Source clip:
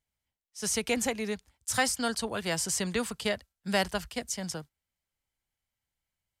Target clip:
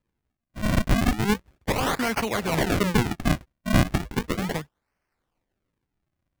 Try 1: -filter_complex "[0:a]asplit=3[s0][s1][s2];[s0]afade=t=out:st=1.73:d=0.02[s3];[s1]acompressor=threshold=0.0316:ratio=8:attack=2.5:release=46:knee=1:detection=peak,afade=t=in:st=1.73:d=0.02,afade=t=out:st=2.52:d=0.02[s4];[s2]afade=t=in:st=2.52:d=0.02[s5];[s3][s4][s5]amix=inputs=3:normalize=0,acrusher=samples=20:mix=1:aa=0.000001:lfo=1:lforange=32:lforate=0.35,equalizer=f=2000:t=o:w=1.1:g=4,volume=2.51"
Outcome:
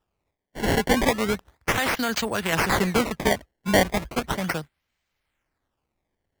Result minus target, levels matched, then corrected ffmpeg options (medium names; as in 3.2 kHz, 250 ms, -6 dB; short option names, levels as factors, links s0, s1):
decimation with a swept rate: distortion -10 dB
-filter_complex "[0:a]asplit=3[s0][s1][s2];[s0]afade=t=out:st=1.73:d=0.02[s3];[s1]acompressor=threshold=0.0316:ratio=8:attack=2.5:release=46:knee=1:detection=peak,afade=t=in:st=1.73:d=0.02,afade=t=out:st=2.52:d=0.02[s4];[s2]afade=t=in:st=2.52:d=0.02[s5];[s3][s4][s5]amix=inputs=3:normalize=0,acrusher=samples=58:mix=1:aa=0.000001:lfo=1:lforange=92.8:lforate=0.35,equalizer=f=2000:t=o:w=1.1:g=4,volume=2.51"